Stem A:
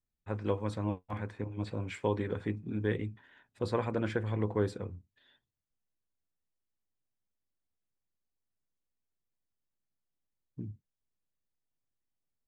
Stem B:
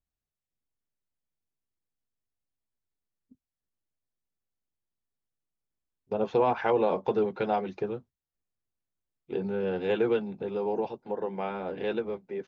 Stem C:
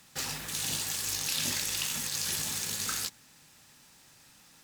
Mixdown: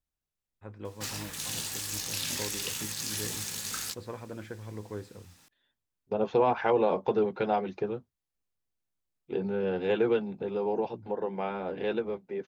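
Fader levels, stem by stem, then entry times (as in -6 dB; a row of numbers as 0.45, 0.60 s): -9.0, 0.0, -2.5 dB; 0.35, 0.00, 0.85 s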